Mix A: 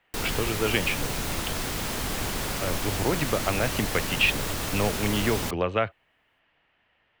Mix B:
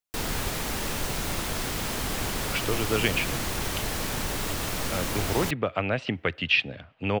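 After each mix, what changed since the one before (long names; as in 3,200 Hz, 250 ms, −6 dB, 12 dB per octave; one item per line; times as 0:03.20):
speech: entry +2.30 s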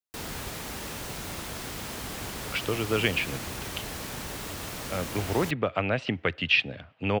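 background −6.0 dB
master: add high-pass filter 46 Hz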